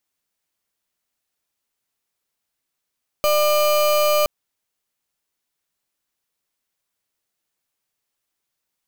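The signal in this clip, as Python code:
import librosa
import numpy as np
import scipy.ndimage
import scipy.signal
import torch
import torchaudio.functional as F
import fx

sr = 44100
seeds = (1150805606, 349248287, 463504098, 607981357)

y = fx.pulse(sr, length_s=1.02, hz=600.0, level_db=-17.0, duty_pct=32)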